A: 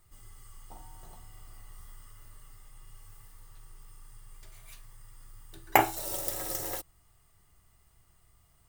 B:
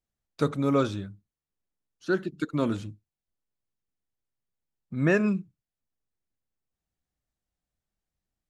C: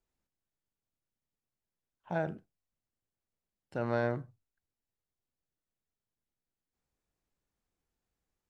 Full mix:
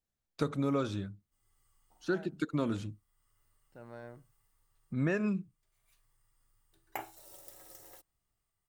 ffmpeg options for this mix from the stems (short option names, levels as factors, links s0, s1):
-filter_complex "[0:a]lowshelf=f=200:g=-5,adelay=1200,volume=0.119[s0];[1:a]acompressor=threshold=0.0562:ratio=6,volume=0.794,asplit=2[s1][s2];[2:a]volume=0.141[s3];[s2]apad=whole_len=436145[s4];[s0][s4]sidechaincompress=threshold=0.00631:ratio=10:attack=8.5:release=533[s5];[s5][s1][s3]amix=inputs=3:normalize=0"